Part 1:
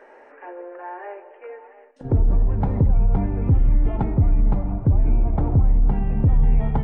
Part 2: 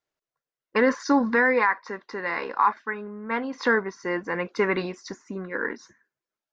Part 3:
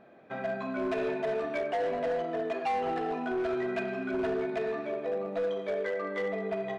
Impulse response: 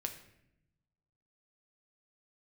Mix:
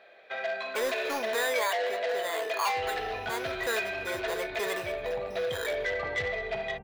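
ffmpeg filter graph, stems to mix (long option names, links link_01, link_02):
-filter_complex "[0:a]adelay=650,volume=-10dB[link_01];[1:a]acrusher=samples=8:mix=1:aa=0.000001,volume=-6.5dB,asplit=2[link_02][link_03];[2:a]equalizer=frequency=125:width_type=o:width=1:gain=-8,equalizer=frequency=250:width_type=o:width=1:gain=-8,equalizer=frequency=1000:width_type=o:width=1:gain=-6,equalizer=frequency=2000:width_type=o:width=1:gain=7,equalizer=frequency=4000:width_type=o:width=1:gain=12,volume=1.5dB[link_04];[link_03]apad=whole_len=330142[link_05];[link_01][link_05]sidechaincompress=threshold=-39dB:ratio=8:attack=16:release=178[link_06];[link_06][link_02][link_04]amix=inputs=3:normalize=0,highpass=74,asoftclip=type=tanh:threshold=-23.5dB,lowshelf=frequency=360:width_type=q:width=1.5:gain=-11"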